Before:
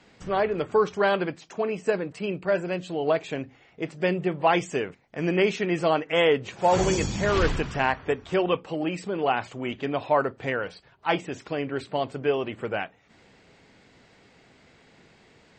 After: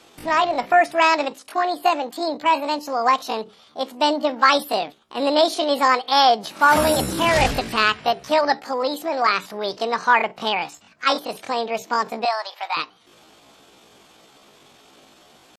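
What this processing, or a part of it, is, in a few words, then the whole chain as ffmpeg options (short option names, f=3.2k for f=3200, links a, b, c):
chipmunk voice: -filter_complex "[0:a]asetrate=72056,aresample=44100,atempo=0.612027,asettb=1/sr,asplit=3[a][b][c];[a]atrim=end=12.254[d];[b]atrim=start=12.25:end=12.77,asetpts=PTS-STARTPTS,afade=t=in:d=0.004:c=qsin,afade=t=out:st=0.516:d=0.004:c=qsin,highpass=f=760:w=0.5412,highpass=f=760:w=1.3066[e];[c]atrim=start=12.766[f];[d][e]acrossfade=d=0.004:c1=hsin:c2=qsin[g];[g][f]acrossfade=d=0.004:c1=qsin:c2=hsin,lowshelf=f=190:g=-6.5,volume=6dB"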